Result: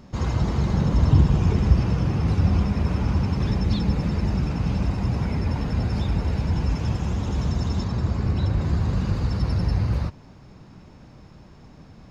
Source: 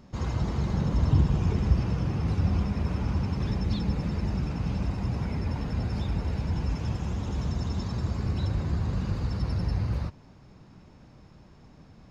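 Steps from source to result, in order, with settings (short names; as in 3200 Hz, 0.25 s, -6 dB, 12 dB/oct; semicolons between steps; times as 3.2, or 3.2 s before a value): 7.84–8.61 high shelf 4200 Hz -6 dB; gain +5.5 dB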